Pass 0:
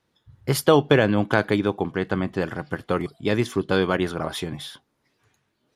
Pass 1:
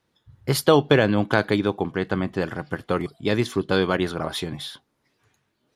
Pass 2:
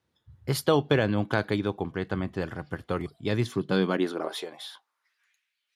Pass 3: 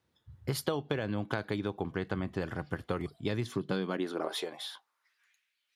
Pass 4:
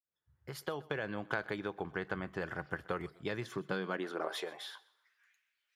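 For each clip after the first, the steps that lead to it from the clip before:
dynamic EQ 4100 Hz, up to +6 dB, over -50 dBFS, Q 4.3
high-pass sweep 68 Hz -> 2300 Hz, 3.2–5.38; gain -6.5 dB
compressor 10:1, threshold -28 dBFS, peak gain reduction 12 dB
opening faded in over 1.09 s; fifteen-band EQ 100 Hz -10 dB, 250 Hz -8 dB, 1600 Hz +5 dB, 4000 Hz -4 dB, 10000 Hz -5 dB; thinning echo 0.127 s, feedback 34%, high-pass 230 Hz, level -21 dB; gain -2 dB

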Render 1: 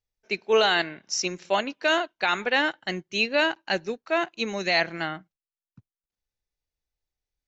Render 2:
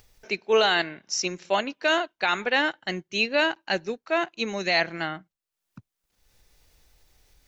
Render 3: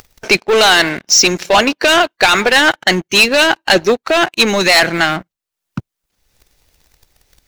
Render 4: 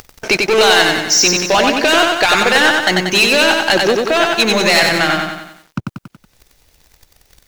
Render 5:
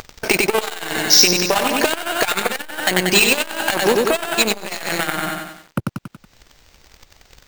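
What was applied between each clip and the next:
upward compressor, threshold -37 dBFS
in parallel at +1 dB: limiter -19 dBFS, peak gain reduction 8.5 dB; on the sum: sample leveller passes 3; harmonic-percussive split harmonic -6 dB; gain +6 dB
compressor 1.5:1, threshold -26 dBFS, peak gain reduction 7 dB; lo-fi delay 93 ms, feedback 55%, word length 8-bit, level -3 dB; gain +3.5 dB
careless resampling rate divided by 4×, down none, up hold; core saturation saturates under 690 Hz; gain +2 dB

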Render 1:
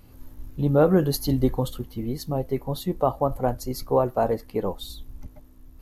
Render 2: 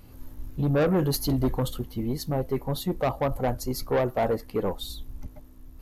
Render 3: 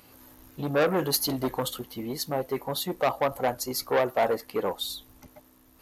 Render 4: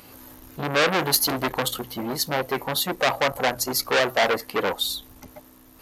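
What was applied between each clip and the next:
soft clip -20 dBFS, distortion -9 dB; gain +1.5 dB
HPF 730 Hz 6 dB/oct; gain +5 dB
notches 60/120 Hz; core saturation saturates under 3100 Hz; gain +7.5 dB

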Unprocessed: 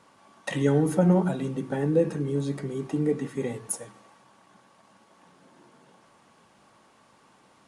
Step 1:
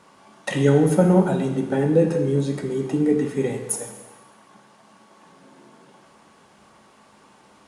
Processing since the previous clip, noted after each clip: bell 390 Hz +2 dB 0.27 oct; plate-style reverb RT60 1.1 s, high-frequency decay 0.95×, pre-delay 0 ms, DRR 5 dB; gain +4.5 dB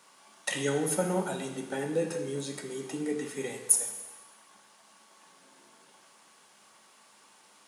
HPF 89 Hz; tilt +3.5 dB/oct; gain -7.5 dB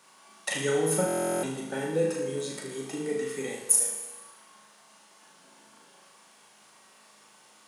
flutter echo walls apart 6.5 m, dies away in 0.57 s; stuck buffer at 1.06, samples 1024, times 15

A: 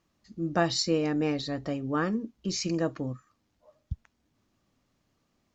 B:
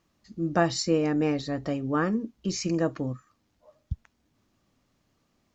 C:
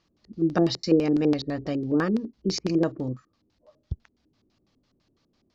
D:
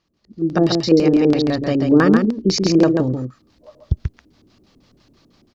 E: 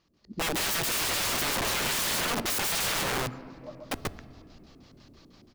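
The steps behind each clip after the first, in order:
dynamic EQ 3900 Hz, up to -7 dB, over -48 dBFS, Q 1.4; gain +2.5 dB
LFO low-pass square 6 Hz 380–4700 Hz
AGC gain up to 14.5 dB; on a send: echo 0.137 s -5 dB; on the sum: gain -1 dB
wrapped overs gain 12.5 dB; on a send at -21 dB: reverb RT60 2.7 s, pre-delay 7 ms; on the sum: wrapped overs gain 24 dB

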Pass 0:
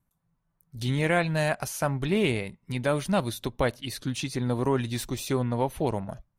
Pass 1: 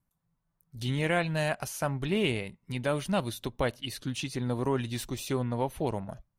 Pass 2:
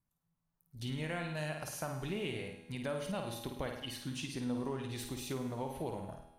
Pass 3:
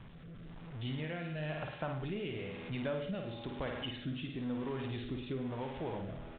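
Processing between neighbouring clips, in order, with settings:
dynamic EQ 2900 Hz, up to +6 dB, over -53 dBFS, Q 7; gain -3.5 dB
flutter echo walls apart 9 m, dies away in 0.52 s; compressor 3:1, threshold -29 dBFS, peak gain reduction 6.5 dB; resonator 82 Hz, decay 1.7 s, harmonics all, mix 70%; gain +3 dB
zero-crossing step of -40.5 dBFS; rotary speaker horn 1 Hz; downsampling 8000 Hz

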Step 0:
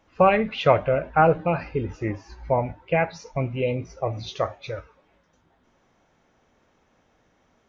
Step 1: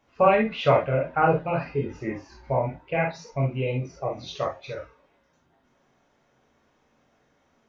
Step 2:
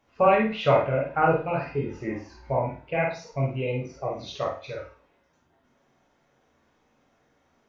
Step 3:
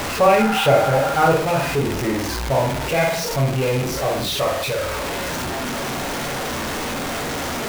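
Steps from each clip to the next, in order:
low shelf 89 Hz -6 dB; non-linear reverb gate 80 ms flat, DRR -1 dB; gain -5 dB
flutter echo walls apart 8.7 m, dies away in 0.35 s; gain -1.5 dB
zero-crossing step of -22.5 dBFS; spectral repair 0.41–1.11, 760–2000 Hz after; gain +3 dB

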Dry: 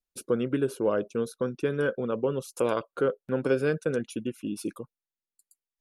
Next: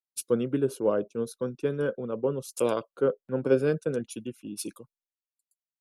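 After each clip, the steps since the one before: dynamic EQ 1800 Hz, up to -6 dB, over -47 dBFS, Q 1.1; three-band expander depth 100%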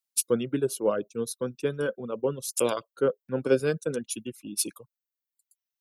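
reverb removal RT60 0.79 s; high shelf 2400 Hz +10 dB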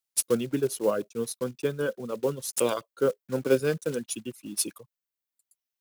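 block floating point 5-bit

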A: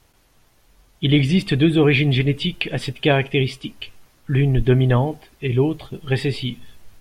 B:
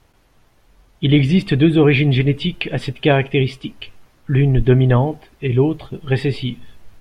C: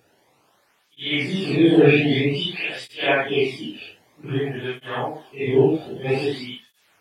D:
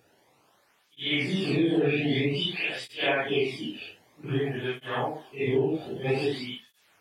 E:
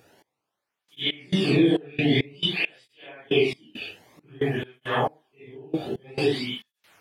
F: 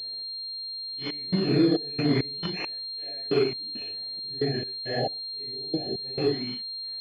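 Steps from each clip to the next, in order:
high shelf 3800 Hz -9 dB; gain +3 dB
phase scrambler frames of 0.2 s; HPF 93 Hz; tape flanging out of phase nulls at 0.52 Hz, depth 1 ms; gain +2 dB
compressor 5:1, threshold -19 dBFS, peak gain reduction 9.5 dB; gain -2.5 dB
step gate "x...x.xx.x." 68 bpm -24 dB; gain +5.5 dB
brick-wall FIR band-stop 800–1600 Hz; pulse-width modulation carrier 4200 Hz; gain -2 dB

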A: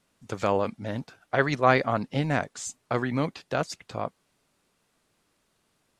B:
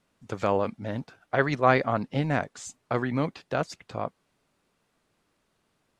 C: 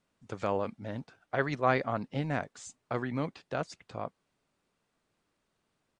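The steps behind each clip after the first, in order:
high shelf 4100 Hz -7 dB
downsampling 22050 Hz; gain -6 dB

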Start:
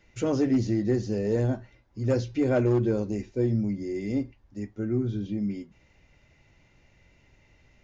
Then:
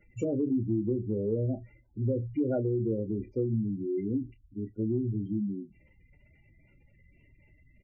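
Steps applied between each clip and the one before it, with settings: spectral gate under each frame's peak -15 dB strong; compressor, threshold -26 dBFS, peak gain reduction 7 dB; doubler 27 ms -11.5 dB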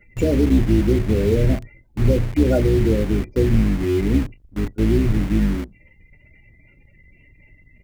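octaver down 2 oct, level +1 dB; in parallel at -7 dB: requantised 6-bit, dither none; on the sum: bell 2100 Hz +7 dB 0.91 oct; gain +7 dB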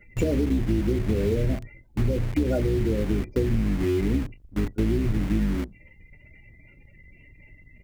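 compressor, threshold -20 dBFS, peak gain reduction 9.5 dB

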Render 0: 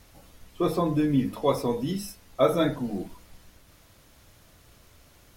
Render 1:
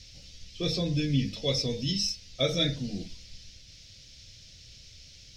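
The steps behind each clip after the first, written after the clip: EQ curve 130 Hz 0 dB, 360 Hz -13 dB, 520 Hz -8 dB, 1000 Hz -26 dB, 2300 Hz +1 dB, 5400 Hz +13 dB, 11000 Hz -20 dB; gain +3 dB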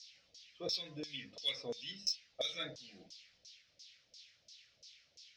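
LFO band-pass saw down 2.9 Hz 540–6000 Hz; added harmonics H 3 -23 dB, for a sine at -23 dBFS; gain +1 dB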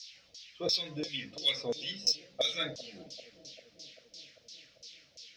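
analogue delay 0.393 s, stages 2048, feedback 69%, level -16.5 dB; gain +7.5 dB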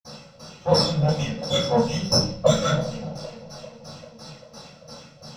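minimum comb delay 1.5 ms; reverb RT60 0.40 s, pre-delay 47 ms; gain +6.5 dB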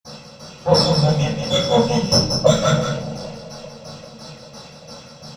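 echo 0.183 s -6.5 dB; gain +4 dB

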